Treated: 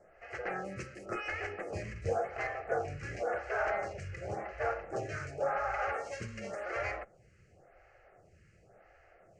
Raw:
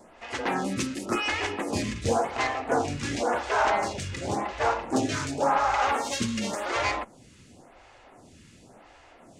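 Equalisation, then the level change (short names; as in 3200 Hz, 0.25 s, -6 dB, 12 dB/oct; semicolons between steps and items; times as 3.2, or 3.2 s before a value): air absorption 96 m; high shelf 4800 Hz -5 dB; fixed phaser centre 970 Hz, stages 6; -5.0 dB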